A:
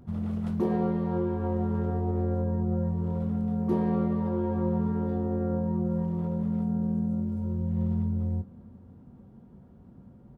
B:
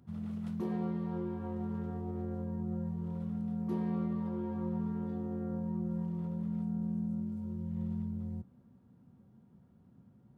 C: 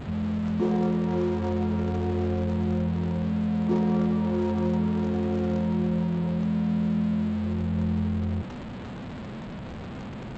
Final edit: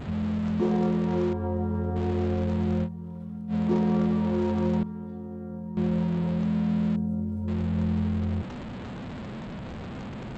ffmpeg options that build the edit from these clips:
ffmpeg -i take0.wav -i take1.wav -i take2.wav -filter_complex "[0:a]asplit=2[link_01][link_02];[1:a]asplit=2[link_03][link_04];[2:a]asplit=5[link_05][link_06][link_07][link_08][link_09];[link_05]atrim=end=1.332[link_10];[link_01]atrim=start=1.328:end=1.962[link_11];[link_06]atrim=start=1.958:end=2.89[link_12];[link_03]atrim=start=2.83:end=3.54[link_13];[link_07]atrim=start=3.48:end=4.832[link_14];[link_04]atrim=start=4.828:end=5.772[link_15];[link_08]atrim=start=5.768:end=6.962[link_16];[link_02]atrim=start=6.958:end=7.482[link_17];[link_09]atrim=start=7.478[link_18];[link_10][link_11]acrossfade=duration=0.004:curve1=hsin:curve2=hsin[link_19];[link_19][link_12]acrossfade=duration=0.004:curve1=hsin:curve2=hsin[link_20];[link_20][link_13]acrossfade=duration=0.06:curve1=tri:curve2=tri[link_21];[link_21][link_14]acrossfade=duration=0.06:curve1=tri:curve2=tri[link_22];[link_22][link_15]acrossfade=duration=0.004:curve1=hsin:curve2=hsin[link_23];[link_23][link_16]acrossfade=duration=0.004:curve1=hsin:curve2=hsin[link_24];[link_24][link_17]acrossfade=duration=0.004:curve1=hsin:curve2=hsin[link_25];[link_25][link_18]acrossfade=duration=0.004:curve1=hsin:curve2=hsin" out.wav

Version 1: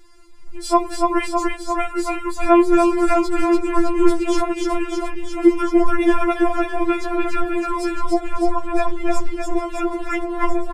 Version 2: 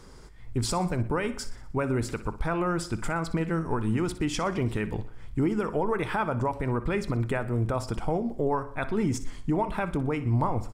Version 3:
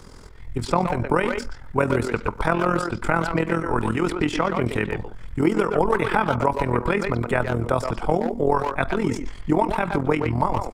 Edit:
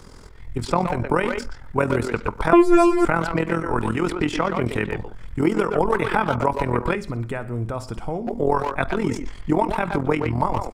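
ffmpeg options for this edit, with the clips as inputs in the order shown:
ffmpeg -i take0.wav -i take1.wav -i take2.wav -filter_complex "[2:a]asplit=3[link_01][link_02][link_03];[link_01]atrim=end=2.532[link_04];[0:a]atrim=start=2.528:end=3.052[link_05];[link_02]atrim=start=3.048:end=6.952[link_06];[1:a]atrim=start=6.948:end=8.272[link_07];[link_03]atrim=start=8.268[link_08];[link_04][link_05]acrossfade=duration=0.004:curve1=hsin:curve2=hsin[link_09];[link_09][link_06]acrossfade=duration=0.004:curve1=hsin:curve2=hsin[link_10];[link_10][link_07]acrossfade=duration=0.004:curve1=hsin:curve2=hsin[link_11];[link_11][link_08]acrossfade=duration=0.004:curve1=hsin:curve2=hsin" out.wav

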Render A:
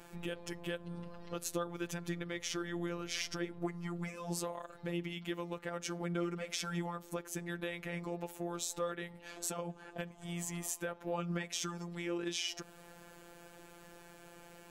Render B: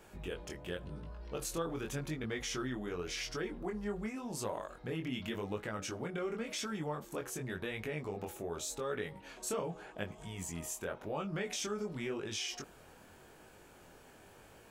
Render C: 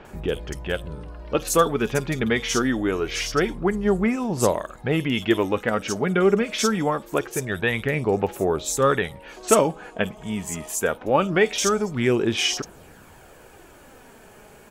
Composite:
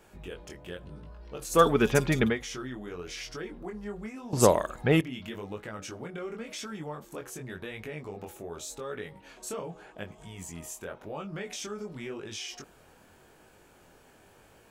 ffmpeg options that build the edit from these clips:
ffmpeg -i take0.wav -i take1.wav -i take2.wav -filter_complex "[2:a]asplit=2[link_01][link_02];[1:a]asplit=3[link_03][link_04][link_05];[link_03]atrim=end=1.64[link_06];[link_01]atrim=start=1.48:end=2.39[link_07];[link_04]atrim=start=2.23:end=4.332[link_08];[link_02]atrim=start=4.328:end=5.012[link_09];[link_05]atrim=start=5.008[link_10];[link_06][link_07]acrossfade=duration=0.16:curve1=tri:curve2=tri[link_11];[link_11][link_08]acrossfade=duration=0.16:curve1=tri:curve2=tri[link_12];[link_12][link_09]acrossfade=duration=0.004:curve1=hsin:curve2=hsin[link_13];[link_13][link_10]acrossfade=duration=0.004:curve1=hsin:curve2=hsin" out.wav

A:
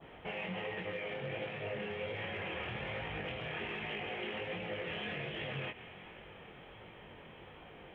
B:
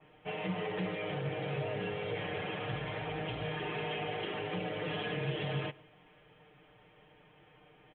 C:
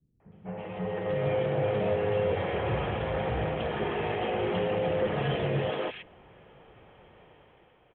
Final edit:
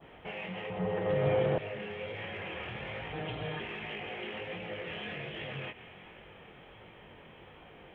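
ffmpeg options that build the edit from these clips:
ffmpeg -i take0.wav -i take1.wav -i take2.wav -filter_complex "[0:a]asplit=3[link_01][link_02][link_03];[link_01]atrim=end=0.702[link_04];[2:a]atrim=start=0.698:end=1.582[link_05];[link_02]atrim=start=1.578:end=3.132[link_06];[1:a]atrim=start=3.128:end=3.612[link_07];[link_03]atrim=start=3.608[link_08];[link_04][link_05]acrossfade=duration=0.004:curve1=hsin:curve2=hsin[link_09];[link_09][link_06]acrossfade=duration=0.004:curve1=hsin:curve2=hsin[link_10];[link_10][link_07]acrossfade=duration=0.004:curve1=hsin:curve2=hsin[link_11];[link_11][link_08]acrossfade=duration=0.004:curve1=hsin:curve2=hsin" out.wav

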